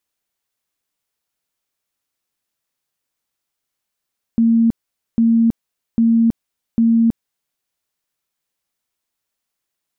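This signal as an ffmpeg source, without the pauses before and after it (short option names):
-f lavfi -i "aevalsrc='0.316*sin(2*PI*229*mod(t,0.8))*lt(mod(t,0.8),74/229)':d=3.2:s=44100"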